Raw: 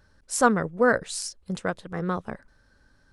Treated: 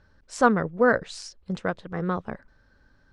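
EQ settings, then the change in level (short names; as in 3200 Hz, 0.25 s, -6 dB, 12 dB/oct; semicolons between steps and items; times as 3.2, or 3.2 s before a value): air absorption 120 m; +1.0 dB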